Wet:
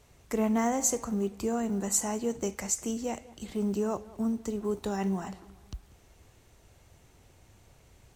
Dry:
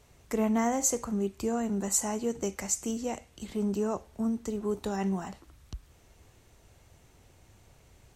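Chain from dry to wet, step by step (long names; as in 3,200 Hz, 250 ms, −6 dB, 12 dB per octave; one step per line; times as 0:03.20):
one scale factor per block 7 bits
tape delay 194 ms, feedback 50%, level −19 dB, low-pass 2,600 Hz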